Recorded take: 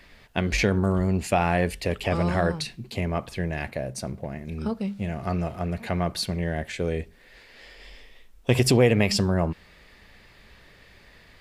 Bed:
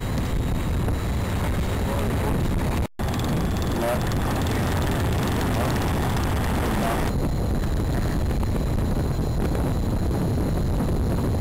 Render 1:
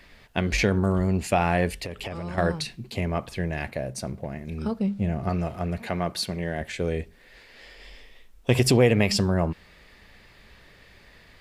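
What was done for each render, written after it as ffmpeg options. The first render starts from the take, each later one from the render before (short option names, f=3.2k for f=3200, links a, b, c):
-filter_complex "[0:a]asettb=1/sr,asplit=3[a][b][c];[a]atrim=end=1.834[d];[b]atrim=start=1.83:end=2.38,asetpts=PTS-STARTPTS,afade=t=in:d=0.004:c=qsin,afade=t=out:st=0.546:d=0.004:c=qsin,acompressor=threshold=-30dB:ratio=5:attack=3.2:release=140:knee=1:detection=peak[e];[c]atrim=start=2.376[f];[d][e]acrossfade=d=0.004:c1=hsin:c2=qsin[g];[g][f]acrossfade=d=0.004:c1=qsin:c2=hsin,asettb=1/sr,asplit=3[h][i][j];[h]atrim=end=4.794[k];[i]atrim=start=4.79:end=5.29,asetpts=PTS-STARTPTS,afade=t=in:d=0.004:c=qsin,afade=t=out:st=0.496:d=0.004:c=qsin,tiltshelf=f=850:g=4.5[l];[j]atrim=start=5.286[m];[k][l]acrossfade=d=0.004:c1=hsin:c2=qsin[n];[n][m]acrossfade=d=0.004:c1=qsin:c2=hsin,asettb=1/sr,asplit=3[o][p][q];[o]atrim=end=5.824[r];[p]atrim=start=5.82:end=6.61,asetpts=PTS-STARTPTS,afade=t=in:d=0.004:c=qsin,afade=t=out:st=0.786:d=0.004:c=qsin,highpass=f=150:p=1[s];[q]atrim=start=6.606[t];[r][s]acrossfade=d=0.004:c1=hsin:c2=qsin[u];[u][t]acrossfade=d=0.004:c1=qsin:c2=hsin"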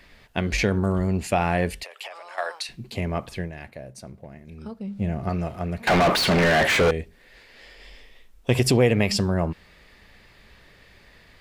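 -filter_complex "[0:a]asettb=1/sr,asplit=3[a][b][c];[a]atrim=end=1.834[d];[b]atrim=start=1.83:end=2.69,asetpts=PTS-STARTPTS,afade=t=in:d=0.004:c=qsin,afade=t=out:st=0.856:d=0.004:c=qsin,highpass=f=650:w=0.5412,highpass=f=650:w=1.3066[e];[c]atrim=start=2.686[f];[d][e]acrossfade=d=0.004:c1=hsin:c2=qsin[g];[g][f]acrossfade=d=0.004:c1=qsin:c2=hsin,asettb=1/sr,asplit=3[h][i][j];[h]atrim=end=5.874[k];[i]atrim=start=5.87:end=6.91,asetpts=PTS-STARTPTS,afade=t=in:d=0.004:c=qsin,afade=t=out:st=1.036:d=0.004:c=qsin,asplit=2[l][m];[m]highpass=f=720:p=1,volume=39dB,asoftclip=type=tanh:threshold=-10.5dB[n];[l][n]amix=inputs=2:normalize=0,lowpass=f=2.5k:p=1,volume=-6dB[o];[j]atrim=start=6.906[p];[k][o]acrossfade=d=0.004:c1=hsin:c2=qsin[q];[q][p]acrossfade=d=0.004:c1=qsin:c2=hsin,asplit=3[r][s][t];[r]atrim=end=3.52,asetpts=PTS-STARTPTS,afade=t=out:st=3.37:d=0.15:silence=0.375837[u];[s]atrim=start=3.52:end=4.86,asetpts=PTS-STARTPTS,volume=-8.5dB[v];[t]atrim=start=4.86,asetpts=PTS-STARTPTS,afade=t=in:d=0.15:silence=0.375837[w];[u][v][w]concat=n=3:v=0:a=1"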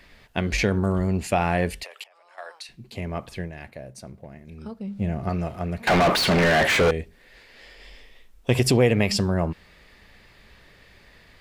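-filter_complex "[0:a]asplit=2[a][b];[a]atrim=end=2.04,asetpts=PTS-STARTPTS,afade=t=out:st=2.036:d=0.004:c=hsin:silence=0.0841395[c];[b]atrim=start=2.04,asetpts=PTS-STARTPTS,afade=t=in:d=1.66:silence=0.0841395[d];[c][d]concat=n=2:v=0:a=1"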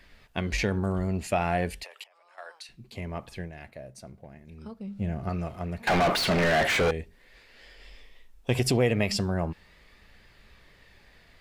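-af "flanger=delay=0.6:depth=1:regen=81:speed=0.39:shape=triangular"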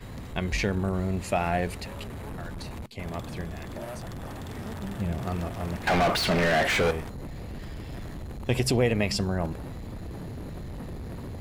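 -filter_complex "[1:a]volume=-14.5dB[a];[0:a][a]amix=inputs=2:normalize=0"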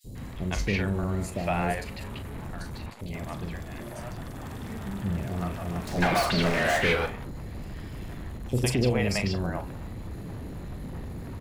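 -filter_complex "[0:a]asplit=2[a][b];[b]adelay=40,volume=-11dB[c];[a][c]amix=inputs=2:normalize=0,acrossover=split=540|4600[d][e][f];[d]adelay=40[g];[e]adelay=150[h];[g][h][f]amix=inputs=3:normalize=0"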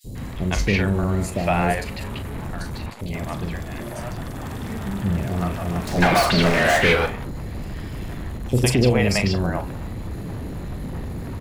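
-af "volume=7dB"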